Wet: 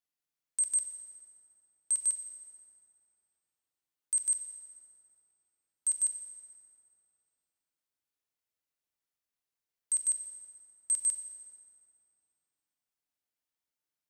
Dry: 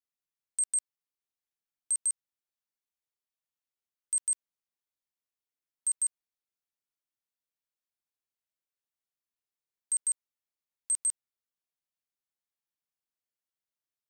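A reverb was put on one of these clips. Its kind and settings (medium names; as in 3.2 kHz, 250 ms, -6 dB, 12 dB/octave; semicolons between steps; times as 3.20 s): FDN reverb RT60 2.9 s, high-frequency decay 0.55×, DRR 4 dB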